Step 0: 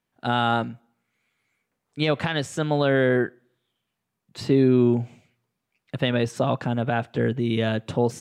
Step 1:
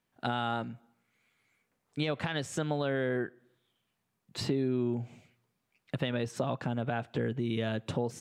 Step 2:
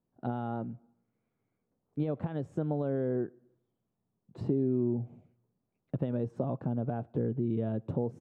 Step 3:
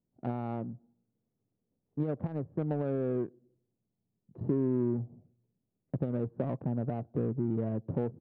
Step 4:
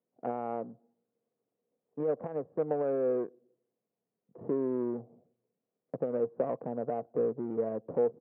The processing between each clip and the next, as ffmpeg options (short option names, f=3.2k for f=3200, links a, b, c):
-af "acompressor=threshold=-31dB:ratio=3"
-af "firequalizer=gain_entry='entry(330,0);entry(1900,-22);entry(4700,-29)':delay=0.05:min_phase=1,volume=1.5dB"
-af "adynamicsmooth=sensitivity=2:basefreq=640"
-af "highpass=290,equalizer=f=330:t=q:w=4:g=-3,equalizer=f=480:t=q:w=4:g=10,equalizer=f=700:t=q:w=4:g=5,equalizer=f=1.1k:t=q:w=4:g=4,lowpass=f=2.4k:w=0.5412,lowpass=f=2.4k:w=1.3066"